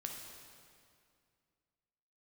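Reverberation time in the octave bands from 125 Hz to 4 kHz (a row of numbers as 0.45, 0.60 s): 2.7, 2.6, 2.3, 2.2, 2.1, 1.9 s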